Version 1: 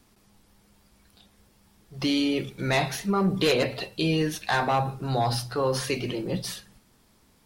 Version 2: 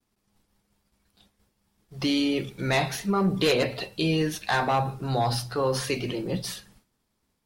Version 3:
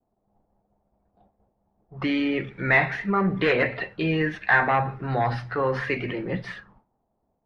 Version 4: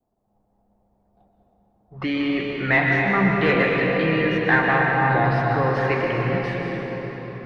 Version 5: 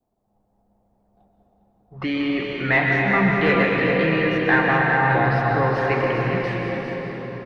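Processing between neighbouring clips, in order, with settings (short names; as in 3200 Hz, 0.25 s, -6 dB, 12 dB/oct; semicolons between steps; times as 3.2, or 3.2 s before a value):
expander -51 dBFS
envelope low-pass 700–1900 Hz up, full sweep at -30.5 dBFS
reverb RT60 5.1 s, pre-delay 0.114 s, DRR -1.5 dB
echo 0.404 s -7.5 dB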